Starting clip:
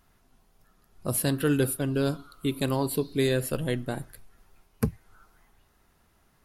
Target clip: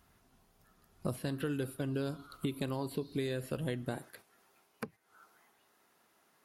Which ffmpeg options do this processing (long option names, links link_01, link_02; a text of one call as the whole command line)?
ffmpeg -i in.wav -filter_complex "[0:a]acompressor=threshold=-38dB:ratio=10,asetnsamples=nb_out_samples=441:pad=0,asendcmd='3.97 highpass f 300',highpass=44,agate=range=-7dB:threshold=-56dB:ratio=16:detection=peak,acrossover=split=4400[link_01][link_02];[link_02]acompressor=threshold=-56dB:ratio=4:attack=1:release=60[link_03];[link_01][link_03]amix=inputs=2:normalize=0,volume=5.5dB" out.wav